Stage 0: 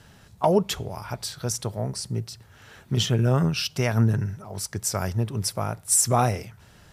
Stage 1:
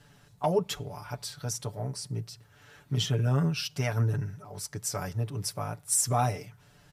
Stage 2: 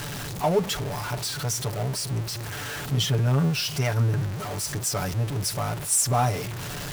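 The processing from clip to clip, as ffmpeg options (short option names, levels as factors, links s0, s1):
-af "aecho=1:1:6.9:0.78,volume=0.398"
-af "aeval=exprs='val(0)+0.5*0.0316*sgn(val(0))':c=same,volume=1.26"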